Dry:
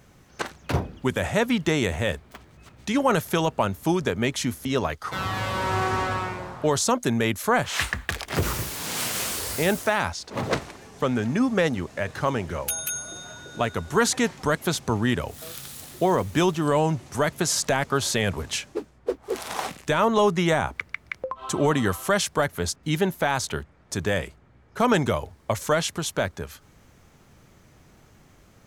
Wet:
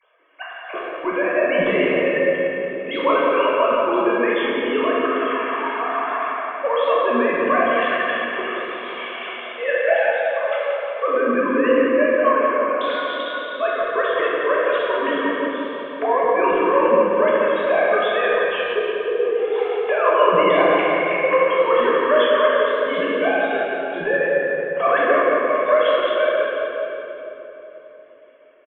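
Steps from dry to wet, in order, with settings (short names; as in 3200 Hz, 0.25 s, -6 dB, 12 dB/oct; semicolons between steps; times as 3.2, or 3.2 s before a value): sine-wave speech; high shelf 3000 Hz +9 dB; in parallel at +0.5 dB: limiter -15.5 dBFS, peak gain reduction 10.5 dB; on the sum: comb 1.8 ms, depth 49%; flange 1 Hz, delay 2.7 ms, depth 9.7 ms, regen +85%; on a send: feedback echo 0.176 s, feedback 57%, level -8 dB; on the sum: shoebox room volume 210 m³, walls hard, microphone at 1.1 m; gain -5.5 dB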